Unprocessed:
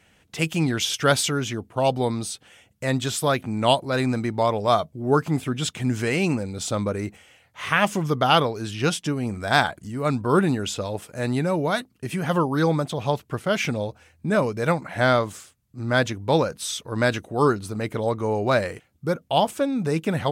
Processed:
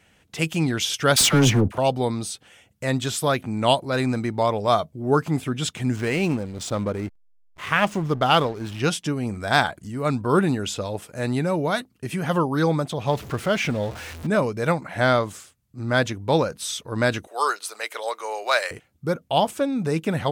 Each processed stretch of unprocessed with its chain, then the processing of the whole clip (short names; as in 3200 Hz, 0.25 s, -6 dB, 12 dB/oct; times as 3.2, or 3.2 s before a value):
1.16–1.78 low shelf 260 Hz +7 dB + sample leveller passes 3 + dispersion lows, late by 49 ms, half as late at 740 Hz
5.96–8.8 high shelf 9600 Hz -3.5 dB + backlash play -32.5 dBFS
13.07–14.27 zero-crossing step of -32.5 dBFS + high shelf 7300 Hz -8 dB + mismatched tape noise reduction encoder only
17.27–18.71 HPF 470 Hz 24 dB/oct + tilt shelf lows -8 dB, about 870 Hz
whole clip: dry